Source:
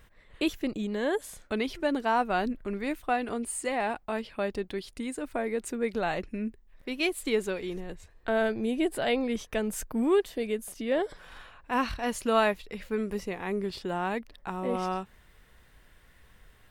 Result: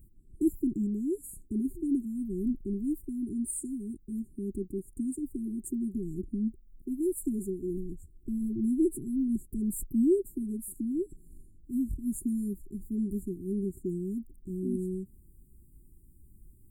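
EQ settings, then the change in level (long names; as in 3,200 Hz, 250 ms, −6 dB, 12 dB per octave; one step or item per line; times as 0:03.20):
linear-phase brick-wall band-stop 400–6,700 Hz
Butterworth band-reject 950 Hz, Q 0.64
Butterworth band-reject 4,800 Hz, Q 0.73
+3.0 dB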